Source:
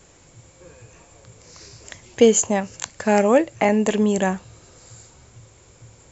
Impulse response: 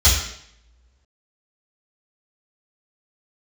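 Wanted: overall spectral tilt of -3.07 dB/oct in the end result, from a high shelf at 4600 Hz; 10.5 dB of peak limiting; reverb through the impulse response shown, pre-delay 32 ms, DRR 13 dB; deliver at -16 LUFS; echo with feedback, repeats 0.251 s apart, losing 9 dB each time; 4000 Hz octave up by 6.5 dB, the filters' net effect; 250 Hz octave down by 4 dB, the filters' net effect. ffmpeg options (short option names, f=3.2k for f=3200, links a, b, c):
-filter_complex "[0:a]equalizer=f=250:t=o:g=-5,equalizer=f=4k:t=o:g=6.5,highshelf=f=4.6k:g=6,alimiter=limit=-10dB:level=0:latency=1,aecho=1:1:251|502|753|1004:0.355|0.124|0.0435|0.0152,asplit=2[a][b];[1:a]atrim=start_sample=2205,adelay=32[c];[b][c]afir=irnorm=-1:irlink=0,volume=-32.5dB[d];[a][d]amix=inputs=2:normalize=0,volume=6.5dB"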